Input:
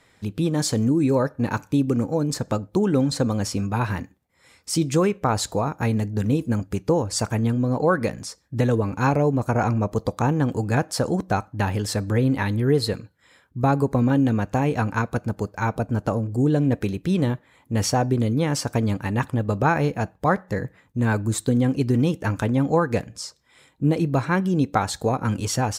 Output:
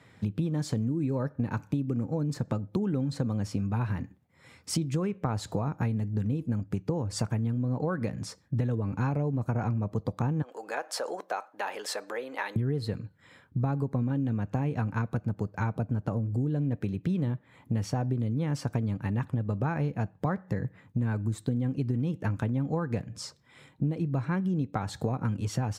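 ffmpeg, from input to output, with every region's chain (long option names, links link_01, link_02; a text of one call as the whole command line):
ffmpeg -i in.wav -filter_complex "[0:a]asettb=1/sr,asplit=3[link_01][link_02][link_03];[link_01]atrim=end=10.424[link_04];[link_02]atrim=start=10.42:end=12.56,asetpts=PTS-STARTPTS,afade=type=in:duration=0.004:curve=qsin,afade=type=out:start_time=2.136:duration=0.004:curve=qsin,acompressor=threshold=-23dB:ratio=2.5:attack=3.2:release=140:knee=1:detection=peak,highpass=frequency=500:width=0.5412,highpass=frequency=500:width=1.3066[link_05];[link_03]atrim=start=12.556[link_06];[link_04][link_05]acrossfade=duration=0.004:curve1=hsin:curve2=qsin[link_07];[link_07][link_06]acrossfade=duration=0.004:curve1=qsin:curve2=hsin,highpass=frequency=88:width=0.5412,highpass=frequency=88:width=1.3066,bass=frequency=250:gain=9,treble=frequency=4000:gain=-7,acompressor=threshold=-27dB:ratio=6" out.wav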